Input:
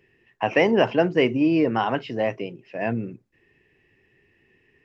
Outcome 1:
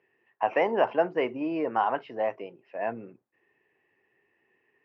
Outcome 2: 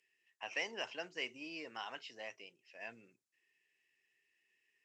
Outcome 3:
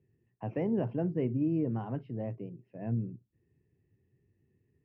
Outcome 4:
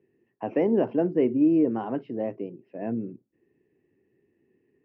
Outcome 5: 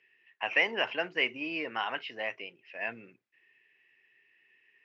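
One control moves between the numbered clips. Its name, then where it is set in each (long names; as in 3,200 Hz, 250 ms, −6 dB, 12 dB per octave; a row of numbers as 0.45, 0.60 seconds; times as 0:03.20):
resonant band-pass, frequency: 900, 7,900, 110, 290, 2,400 Hertz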